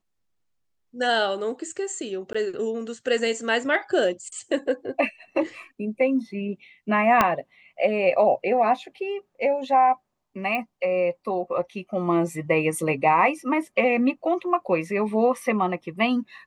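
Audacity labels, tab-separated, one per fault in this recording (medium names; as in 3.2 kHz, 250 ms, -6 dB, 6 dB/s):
2.330000	2.350000	dropout 15 ms
7.210000	7.210000	pop -5 dBFS
10.550000	10.550000	pop -16 dBFS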